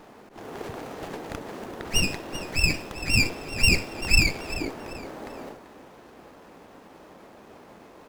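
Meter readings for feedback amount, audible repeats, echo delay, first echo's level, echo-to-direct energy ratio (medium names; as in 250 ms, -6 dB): 31%, 3, 388 ms, -14.5 dB, -14.0 dB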